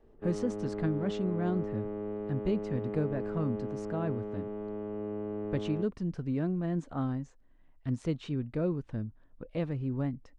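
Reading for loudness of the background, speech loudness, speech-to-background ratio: -37.5 LUFS, -34.5 LUFS, 3.0 dB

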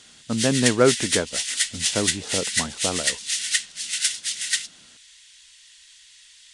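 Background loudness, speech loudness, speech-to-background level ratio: -23.5 LUFS, -25.0 LUFS, -1.5 dB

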